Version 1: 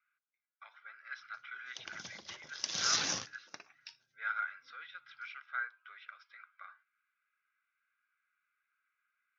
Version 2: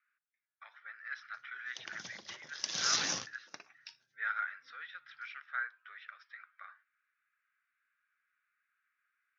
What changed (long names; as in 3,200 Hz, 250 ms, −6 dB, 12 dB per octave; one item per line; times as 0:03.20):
speech: remove Butterworth band-reject 1,800 Hz, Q 6.4
master: add high-pass filter 100 Hz